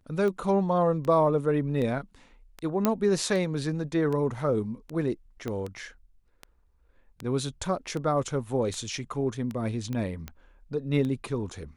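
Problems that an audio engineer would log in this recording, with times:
scratch tick 78 rpm −22 dBFS
0:02.85: click −9 dBFS
0:05.48: click −20 dBFS
0:09.93: click −21 dBFS

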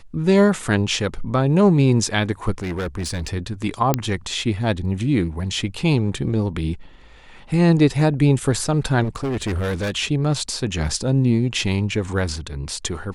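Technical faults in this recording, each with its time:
0:02.58–0:03.28: clipping −22 dBFS
0:03.94: click −3 dBFS
0:09.03–0:09.96: clipping −20 dBFS

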